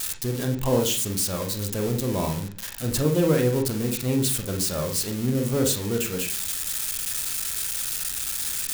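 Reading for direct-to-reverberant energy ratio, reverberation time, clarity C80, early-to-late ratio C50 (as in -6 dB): 3.0 dB, 0.45 s, 15.5 dB, 9.5 dB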